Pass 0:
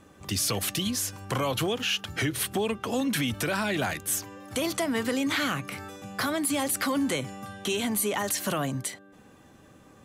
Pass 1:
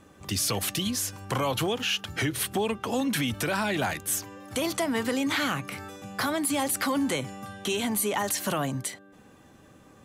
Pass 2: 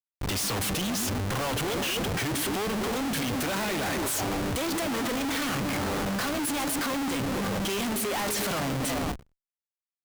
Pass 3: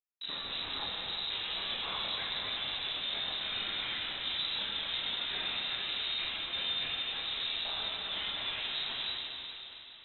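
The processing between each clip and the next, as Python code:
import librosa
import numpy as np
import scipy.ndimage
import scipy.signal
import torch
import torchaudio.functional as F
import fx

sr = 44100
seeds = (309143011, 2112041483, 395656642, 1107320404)

y1 = fx.dynamic_eq(x, sr, hz=870.0, q=3.9, threshold_db=-45.0, ratio=4.0, max_db=4)
y2 = fx.echo_stepped(y1, sr, ms=122, hz=230.0, octaves=0.7, feedback_pct=70, wet_db=-4.0)
y2 = fx.schmitt(y2, sr, flips_db=-40.0)
y2 = fx.end_taper(y2, sr, db_per_s=230.0)
y3 = fx.chorus_voices(y2, sr, voices=4, hz=0.28, base_ms=27, depth_ms=2.5, mix_pct=45)
y3 = fx.rev_plate(y3, sr, seeds[0], rt60_s=3.7, hf_ratio=1.0, predelay_ms=0, drr_db=-2.5)
y3 = fx.freq_invert(y3, sr, carrier_hz=3900)
y3 = y3 * 10.0 ** (-8.5 / 20.0)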